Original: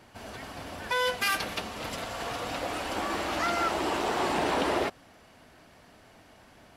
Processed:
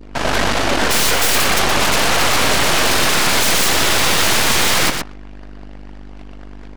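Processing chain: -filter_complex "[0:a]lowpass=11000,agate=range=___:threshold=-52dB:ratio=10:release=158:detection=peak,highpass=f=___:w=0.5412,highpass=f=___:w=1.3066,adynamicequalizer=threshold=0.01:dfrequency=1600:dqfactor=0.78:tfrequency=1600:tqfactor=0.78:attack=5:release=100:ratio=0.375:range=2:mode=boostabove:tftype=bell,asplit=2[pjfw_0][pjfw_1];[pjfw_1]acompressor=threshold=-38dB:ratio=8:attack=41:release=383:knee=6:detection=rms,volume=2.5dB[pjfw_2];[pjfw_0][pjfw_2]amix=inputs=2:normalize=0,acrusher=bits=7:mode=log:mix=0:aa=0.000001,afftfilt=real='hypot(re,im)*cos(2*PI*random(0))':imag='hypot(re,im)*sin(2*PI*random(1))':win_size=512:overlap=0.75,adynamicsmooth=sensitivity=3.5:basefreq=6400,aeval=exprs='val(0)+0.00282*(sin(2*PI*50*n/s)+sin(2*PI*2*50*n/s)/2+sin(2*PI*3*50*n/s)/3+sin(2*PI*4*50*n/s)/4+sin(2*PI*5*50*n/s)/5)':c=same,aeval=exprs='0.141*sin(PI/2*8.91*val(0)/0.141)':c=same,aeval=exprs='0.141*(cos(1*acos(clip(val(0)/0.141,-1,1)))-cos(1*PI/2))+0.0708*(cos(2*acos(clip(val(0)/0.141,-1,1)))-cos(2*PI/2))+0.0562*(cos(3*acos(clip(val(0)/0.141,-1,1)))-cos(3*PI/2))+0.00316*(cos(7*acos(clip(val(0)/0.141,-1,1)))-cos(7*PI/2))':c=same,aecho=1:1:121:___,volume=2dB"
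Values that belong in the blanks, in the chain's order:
-14dB, 180, 180, 0.473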